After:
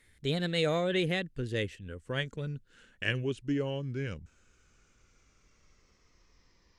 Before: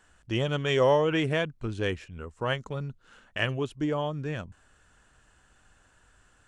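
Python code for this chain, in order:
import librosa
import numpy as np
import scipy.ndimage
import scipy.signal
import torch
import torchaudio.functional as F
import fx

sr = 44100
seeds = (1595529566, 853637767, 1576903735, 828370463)

y = fx.speed_glide(x, sr, from_pct=124, to_pct=67)
y = fx.band_shelf(y, sr, hz=890.0, db=-10.5, octaves=1.3)
y = y * librosa.db_to_amplitude(-2.0)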